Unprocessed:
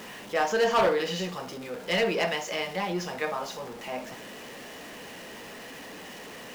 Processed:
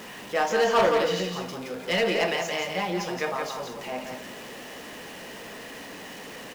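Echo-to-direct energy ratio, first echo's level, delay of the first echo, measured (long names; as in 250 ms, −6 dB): −5.5 dB, −5.5 dB, 172 ms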